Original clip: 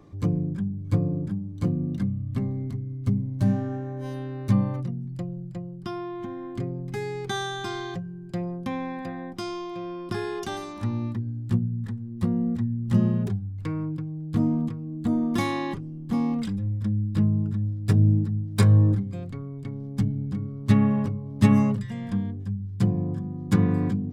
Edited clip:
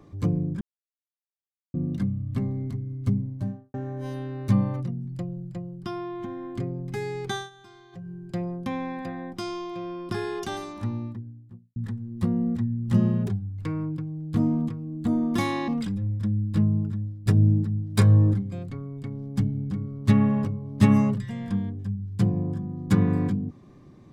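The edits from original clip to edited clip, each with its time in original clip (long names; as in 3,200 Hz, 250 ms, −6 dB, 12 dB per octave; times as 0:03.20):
0:00.61–0:01.74: silence
0:03.08–0:03.74: fade out and dull
0:07.31–0:08.11: duck −19 dB, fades 0.19 s
0:10.54–0:11.76: fade out and dull
0:15.68–0:16.29: remove
0:17.38–0:17.87: fade out, to −10 dB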